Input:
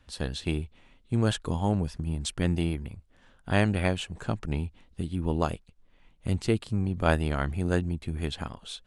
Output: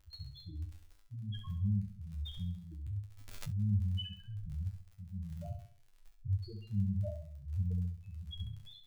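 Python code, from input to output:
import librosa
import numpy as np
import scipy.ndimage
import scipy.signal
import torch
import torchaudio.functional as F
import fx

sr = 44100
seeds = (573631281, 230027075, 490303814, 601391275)

p1 = fx.over_compress(x, sr, threshold_db=-34.0, ratio=-1.0)
p2 = x + F.gain(torch.from_numpy(p1), 0.0).numpy()
p3 = fx.spec_topn(p2, sr, count=2)
p4 = fx.dmg_crackle(p3, sr, seeds[0], per_s=35.0, level_db=-38.0)
p5 = p4 * (1.0 - 0.67 / 2.0 + 0.67 / 2.0 * np.cos(2.0 * np.pi * 1.3 * (np.arange(len(p4)) / sr)))
p6 = fx.comb_fb(p5, sr, f0_hz=100.0, decay_s=0.3, harmonics='all', damping=0.0, mix_pct=90)
p7 = fx.echo_feedback(p6, sr, ms=67, feedback_pct=42, wet_db=-8.0)
p8 = fx.pre_swell(p7, sr, db_per_s=44.0, at=(2.48, 3.62))
y = F.gain(torch.from_numpy(p8), 3.0).numpy()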